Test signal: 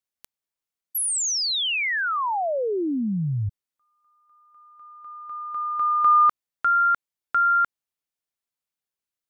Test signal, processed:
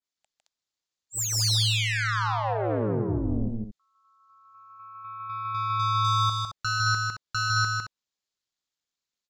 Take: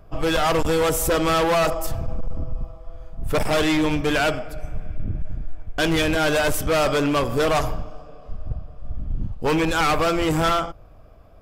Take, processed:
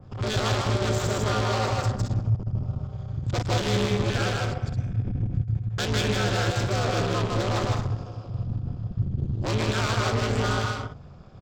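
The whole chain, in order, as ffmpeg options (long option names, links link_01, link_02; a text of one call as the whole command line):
ffmpeg -i in.wav -af "equalizer=frequency=730:width=5.6:gain=-7,acontrast=35,aresample=16000,asoftclip=type=tanh:threshold=-20.5dB,aresample=44100,aexciter=amount=1.2:drive=8.6:freq=3500,aeval=exprs='0.251*(cos(1*acos(clip(val(0)/0.251,-1,1)))-cos(1*PI/2))+0.0447*(cos(4*acos(clip(val(0)/0.251,-1,1)))-cos(4*PI/2))':channel_layout=same,aecho=1:1:154.5|218.7:0.794|0.355,aeval=exprs='val(0)*sin(2*PI*110*n/s)':channel_layout=same,adynamicequalizer=threshold=0.0141:dfrequency=2400:dqfactor=0.7:tfrequency=2400:tqfactor=0.7:attack=5:release=100:ratio=0.375:range=2.5:mode=cutabove:tftype=highshelf,volume=-3.5dB" out.wav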